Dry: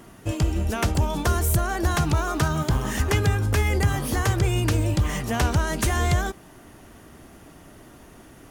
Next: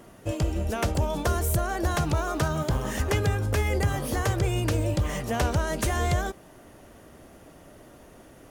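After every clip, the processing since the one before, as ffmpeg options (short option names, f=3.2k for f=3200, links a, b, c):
-af "equalizer=f=550:w=2.5:g=8,volume=-4dB"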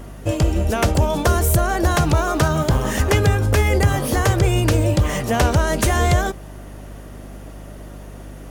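-af "aeval=exprs='val(0)+0.00631*(sin(2*PI*50*n/s)+sin(2*PI*2*50*n/s)/2+sin(2*PI*3*50*n/s)/3+sin(2*PI*4*50*n/s)/4+sin(2*PI*5*50*n/s)/5)':c=same,volume=8.5dB"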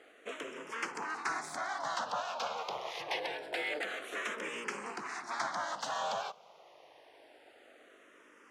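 -filter_complex "[0:a]aeval=exprs='abs(val(0))':c=same,highpass=650,lowpass=4.7k,asplit=2[a][b];[b]afreqshift=-0.26[c];[a][c]amix=inputs=2:normalize=1,volume=-8dB"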